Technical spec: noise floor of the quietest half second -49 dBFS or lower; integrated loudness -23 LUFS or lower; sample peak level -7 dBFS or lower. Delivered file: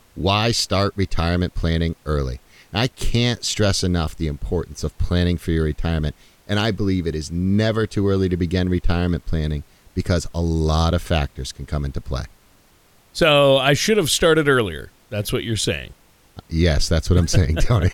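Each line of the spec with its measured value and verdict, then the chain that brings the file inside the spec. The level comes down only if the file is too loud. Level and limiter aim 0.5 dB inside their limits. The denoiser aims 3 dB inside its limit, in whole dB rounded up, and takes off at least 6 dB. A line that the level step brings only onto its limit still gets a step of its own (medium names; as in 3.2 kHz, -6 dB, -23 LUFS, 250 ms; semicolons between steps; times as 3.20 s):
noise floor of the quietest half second -55 dBFS: pass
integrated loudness -20.5 LUFS: fail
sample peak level -4.5 dBFS: fail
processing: trim -3 dB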